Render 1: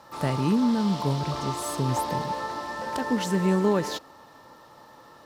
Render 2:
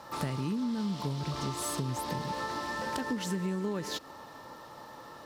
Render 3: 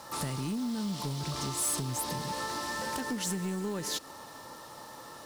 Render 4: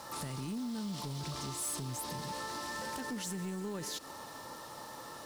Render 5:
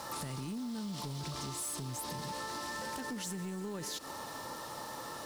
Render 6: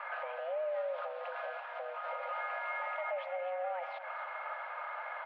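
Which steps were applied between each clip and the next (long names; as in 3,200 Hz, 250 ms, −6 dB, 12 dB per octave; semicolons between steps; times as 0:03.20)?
dynamic equaliser 720 Hz, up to −6 dB, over −41 dBFS, Q 0.97; downward compressor 6 to 1, threshold −33 dBFS, peak gain reduction 12.5 dB; level +2.5 dB
parametric band 9,800 Hz +12.5 dB 1.6 octaves; soft clipping −26 dBFS, distortion −15 dB; log-companded quantiser 6 bits
brickwall limiter −33 dBFS, peak gain reduction 7 dB
downward compressor, threshold −41 dBFS, peak gain reduction 6 dB; level +4 dB
in parallel at −10 dB: sample-and-hold swept by an LFO 27×, swing 60% 2.8 Hz; on the sum: single-tap delay 249 ms −12 dB; single-sideband voice off tune +360 Hz 180–2,400 Hz; level +2 dB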